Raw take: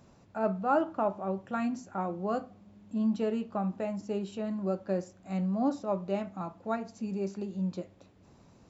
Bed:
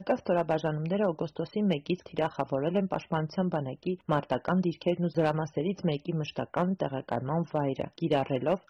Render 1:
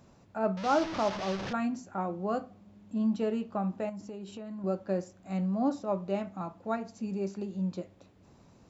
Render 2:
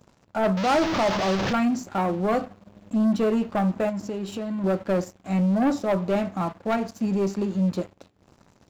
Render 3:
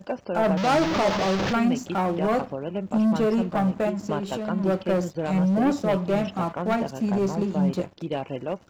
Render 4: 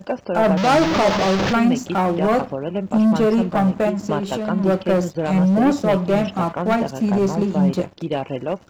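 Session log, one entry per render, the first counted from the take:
0.57–1.53 s: one-bit delta coder 32 kbps, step -30.5 dBFS; 3.89–4.64 s: compression 12:1, threshold -37 dBFS
waveshaping leveller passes 3
add bed -2.5 dB
trim +5.5 dB

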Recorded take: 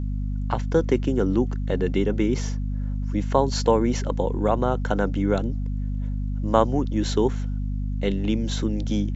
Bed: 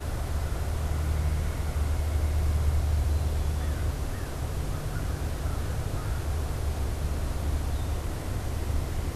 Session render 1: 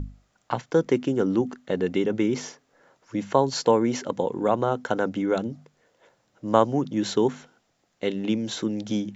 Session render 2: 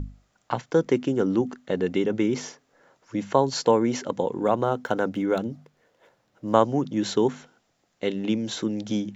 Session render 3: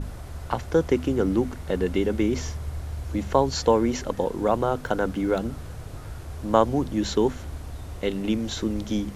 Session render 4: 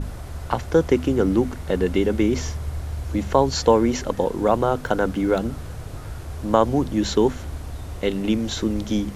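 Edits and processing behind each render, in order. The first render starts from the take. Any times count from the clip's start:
hum notches 50/100/150/200/250 Hz
4.37–6.54 s: median filter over 5 samples
add bed -7 dB
trim +3.5 dB; peak limiter -3 dBFS, peak gain reduction 3 dB

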